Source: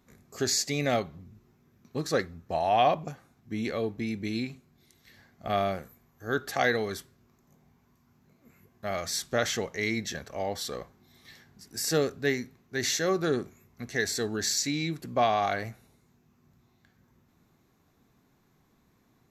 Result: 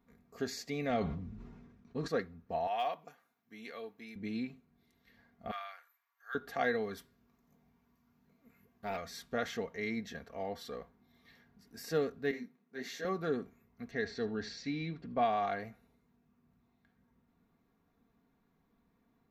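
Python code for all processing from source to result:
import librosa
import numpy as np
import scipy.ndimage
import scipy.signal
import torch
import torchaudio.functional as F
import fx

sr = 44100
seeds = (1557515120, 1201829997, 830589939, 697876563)

y = fx.chain(x, sr, fx.lowpass(hz=9100.0, slope=24),
    fx.low_shelf(hz=81.0, db=9.5),
    fx.sustainer(db_per_s=38.0), at=(0.9, 2.08))
y = fx.chain(y, sr, fx.highpass(hz=1200.0, slope=6),
    fx.overload_stage(gain_db=20.0),
    fx.high_shelf(hz=7800.0, db=8.5), at=(2.67, 4.16))
y = fx.chain(y, sr, fx.highpass(hz=1100.0, slope=24),
    fx.clip_hard(threshold_db=-22.5), at=(5.51, 6.35))
y = fx.chain(y, sr, fx.high_shelf(hz=3200.0, db=9.0),
    fx.doppler_dist(depth_ms=0.36), at=(6.97, 8.97))
y = fx.chain(y, sr, fx.highpass(hz=160.0, slope=24),
    fx.detune_double(cents=55), at=(12.31, 13.05))
y = fx.chain(y, sr, fx.lowpass(hz=5200.0, slope=24),
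    fx.low_shelf(hz=110.0, db=6.5),
    fx.echo_single(ms=78, db=-19.0), at=(13.91, 15.25))
y = fx.peak_eq(y, sr, hz=8000.0, db=-14.5, octaves=1.7)
y = y + 0.49 * np.pad(y, (int(4.3 * sr / 1000.0), 0))[:len(y)]
y = y * 10.0 ** (-7.5 / 20.0)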